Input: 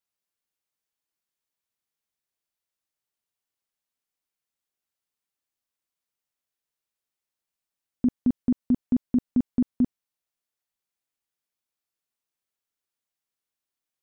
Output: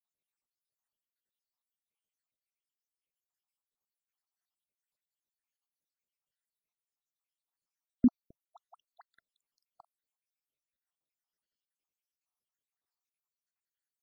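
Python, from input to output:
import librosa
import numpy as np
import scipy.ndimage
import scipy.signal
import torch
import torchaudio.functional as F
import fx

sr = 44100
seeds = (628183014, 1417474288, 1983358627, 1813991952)

y = fx.spec_dropout(x, sr, seeds[0], share_pct=85)
y = fx.dispersion(y, sr, late='highs', ms=53.0, hz=610.0, at=(8.45, 9.11))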